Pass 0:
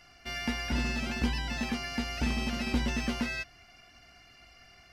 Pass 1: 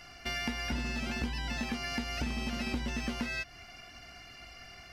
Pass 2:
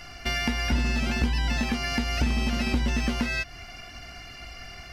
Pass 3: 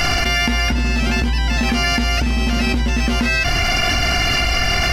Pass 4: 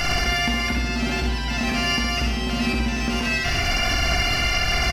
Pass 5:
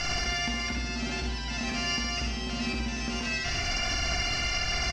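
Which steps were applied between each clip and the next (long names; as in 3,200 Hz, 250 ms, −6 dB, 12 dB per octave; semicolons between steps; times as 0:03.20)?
downward compressor 4 to 1, threshold −39 dBFS, peak gain reduction 13.5 dB; level +6 dB
low-shelf EQ 82 Hz +7.5 dB; level +7 dB
envelope flattener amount 100%; level +3 dB
repeating echo 64 ms, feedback 57%, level −4 dB; level −6 dB
low-pass with resonance 6,400 Hz, resonance Q 1.9; level −9 dB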